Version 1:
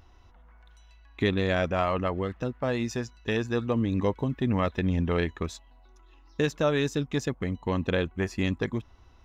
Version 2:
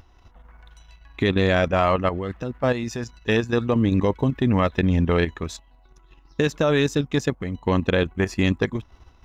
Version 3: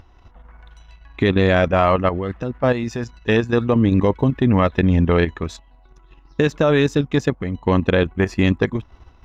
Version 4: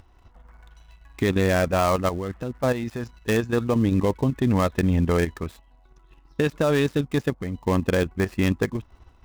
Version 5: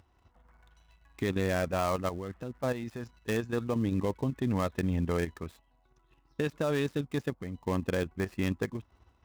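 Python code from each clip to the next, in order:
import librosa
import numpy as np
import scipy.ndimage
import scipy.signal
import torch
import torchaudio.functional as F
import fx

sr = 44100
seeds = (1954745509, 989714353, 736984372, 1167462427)

y1 = fx.level_steps(x, sr, step_db=9)
y1 = y1 * librosa.db_to_amplitude(8.5)
y2 = fx.high_shelf(y1, sr, hz=5100.0, db=-10.5)
y2 = y2 * librosa.db_to_amplitude(4.0)
y3 = fx.dead_time(y2, sr, dead_ms=0.084)
y3 = y3 * librosa.db_to_amplitude(-5.0)
y4 = scipy.signal.sosfilt(scipy.signal.butter(2, 59.0, 'highpass', fs=sr, output='sos'), y3)
y4 = y4 * librosa.db_to_amplitude(-8.5)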